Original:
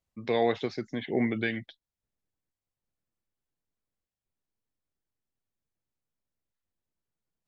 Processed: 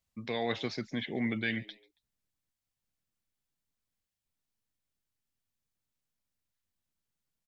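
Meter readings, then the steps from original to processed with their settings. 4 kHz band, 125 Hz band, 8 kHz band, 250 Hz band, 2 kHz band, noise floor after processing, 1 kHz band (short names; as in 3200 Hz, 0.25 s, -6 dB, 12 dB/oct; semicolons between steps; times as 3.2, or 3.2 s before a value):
+1.5 dB, -2.5 dB, n/a, -4.0 dB, -1.0 dB, under -85 dBFS, -7.0 dB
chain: EQ curve 250 Hz 0 dB, 360 Hz -5 dB, 3500 Hz +4 dB; reverse; compressor, threshold -28 dBFS, peak gain reduction 6 dB; reverse; frequency-shifting echo 0.139 s, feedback 35%, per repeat +95 Hz, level -23 dB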